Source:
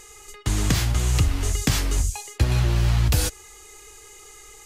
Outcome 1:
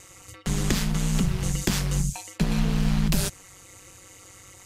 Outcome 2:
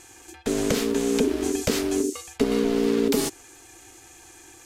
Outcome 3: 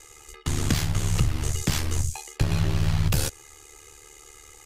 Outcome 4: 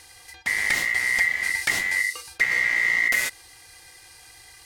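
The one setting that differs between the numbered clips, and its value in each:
ring modulation, frequency: 96, 340, 37, 2,000 Hertz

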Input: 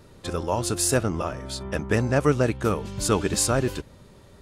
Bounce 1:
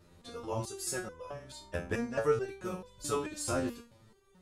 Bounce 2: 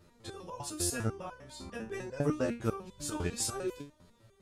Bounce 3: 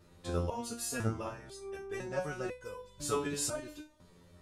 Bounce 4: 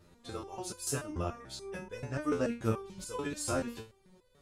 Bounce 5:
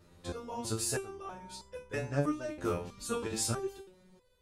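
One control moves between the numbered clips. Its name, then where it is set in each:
step-sequenced resonator, speed: 4.6, 10, 2, 6.9, 3.1 Hertz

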